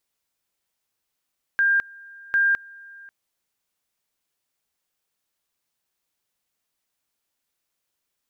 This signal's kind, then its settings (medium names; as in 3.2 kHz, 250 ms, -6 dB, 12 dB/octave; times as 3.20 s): two-level tone 1.6 kHz -16 dBFS, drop 25 dB, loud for 0.21 s, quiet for 0.54 s, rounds 2